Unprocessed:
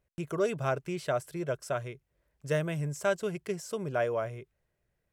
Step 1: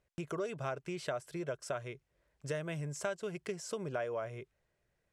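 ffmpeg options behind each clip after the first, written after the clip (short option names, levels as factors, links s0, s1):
-af "acompressor=threshold=0.0158:ratio=4,lowpass=8800,lowshelf=f=260:g=-5,volume=1.26"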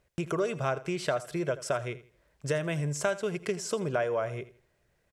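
-af "aecho=1:1:82|164|246:0.15|0.0434|0.0126,volume=2.51"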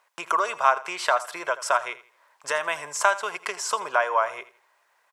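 -af "highpass=f=980:t=q:w=4.1,volume=2.24"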